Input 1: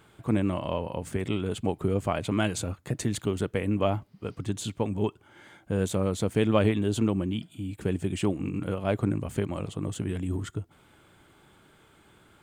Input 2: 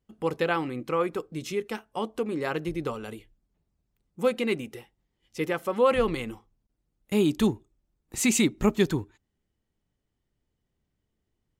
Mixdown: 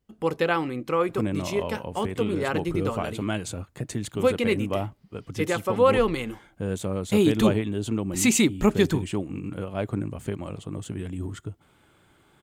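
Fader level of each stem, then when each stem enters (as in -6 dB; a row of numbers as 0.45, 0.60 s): -2.0, +2.5 dB; 0.90, 0.00 s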